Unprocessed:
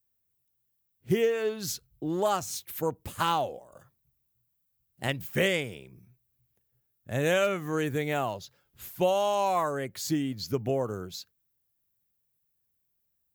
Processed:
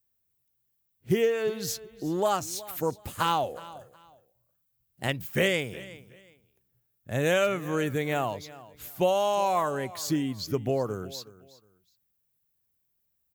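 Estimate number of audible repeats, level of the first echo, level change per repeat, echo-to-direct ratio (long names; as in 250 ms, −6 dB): 2, −18.5 dB, −12.0 dB, −18.0 dB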